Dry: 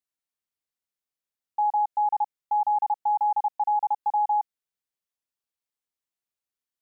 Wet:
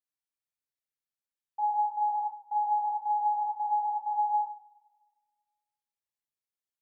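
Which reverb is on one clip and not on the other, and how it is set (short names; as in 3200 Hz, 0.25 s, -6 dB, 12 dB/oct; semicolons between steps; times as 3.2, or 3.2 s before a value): two-slope reverb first 0.45 s, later 1.6 s, from -21 dB, DRR -5 dB; gain -12.5 dB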